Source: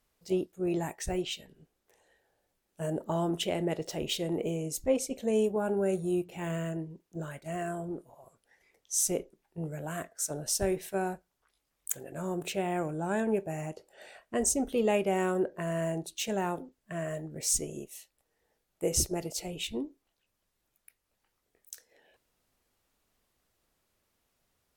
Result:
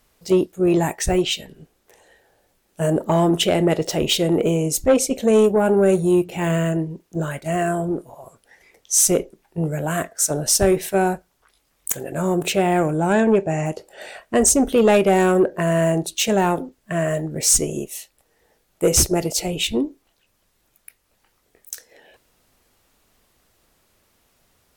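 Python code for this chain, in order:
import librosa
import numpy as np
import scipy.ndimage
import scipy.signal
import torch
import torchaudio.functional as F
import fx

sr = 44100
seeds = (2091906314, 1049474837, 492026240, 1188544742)

y = fx.lowpass(x, sr, hz=7600.0, slope=24, at=(13.13, 13.66))
y = fx.fold_sine(y, sr, drive_db=10, ceiling_db=-9.0)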